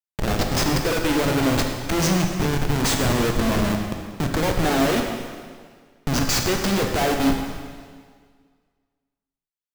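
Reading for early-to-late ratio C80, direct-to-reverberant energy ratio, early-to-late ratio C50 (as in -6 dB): 5.5 dB, 2.5 dB, 4.0 dB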